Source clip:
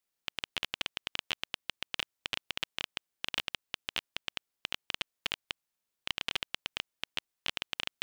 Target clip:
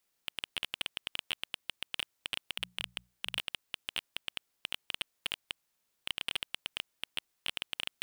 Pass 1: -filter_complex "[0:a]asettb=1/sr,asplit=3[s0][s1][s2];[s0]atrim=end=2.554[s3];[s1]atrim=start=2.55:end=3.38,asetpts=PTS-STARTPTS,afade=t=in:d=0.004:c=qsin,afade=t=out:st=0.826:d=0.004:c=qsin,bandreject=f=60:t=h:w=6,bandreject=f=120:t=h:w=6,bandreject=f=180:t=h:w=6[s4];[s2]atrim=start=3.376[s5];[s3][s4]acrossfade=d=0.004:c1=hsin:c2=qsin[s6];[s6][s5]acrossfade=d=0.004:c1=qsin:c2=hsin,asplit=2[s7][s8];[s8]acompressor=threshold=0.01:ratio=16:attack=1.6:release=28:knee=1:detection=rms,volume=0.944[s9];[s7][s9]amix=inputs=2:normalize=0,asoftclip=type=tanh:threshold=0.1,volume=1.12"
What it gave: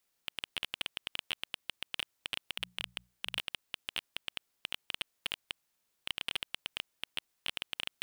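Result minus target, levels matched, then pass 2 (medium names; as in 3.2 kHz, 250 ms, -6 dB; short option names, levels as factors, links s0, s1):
compression: peak gain reduction +11 dB
-filter_complex "[0:a]asettb=1/sr,asplit=3[s0][s1][s2];[s0]atrim=end=2.554[s3];[s1]atrim=start=2.55:end=3.38,asetpts=PTS-STARTPTS,afade=t=in:d=0.004:c=qsin,afade=t=out:st=0.826:d=0.004:c=qsin,bandreject=f=60:t=h:w=6,bandreject=f=120:t=h:w=6,bandreject=f=180:t=h:w=6[s4];[s2]atrim=start=3.376[s5];[s3][s4]acrossfade=d=0.004:c1=hsin:c2=qsin[s6];[s6][s5]acrossfade=d=0.004:c1=qsin:c2=hsin,asplit=2[s7][s8];[s8]acompressor=threshold=0.0398:ratio=16:attack=1.6:release=28:knee=1:detection=rms,volume=0.944[s9];[s7][s9]amix=inputs=2:normalize=0,asoftclip=type=tanh:threshold=0.1,volume=1.12"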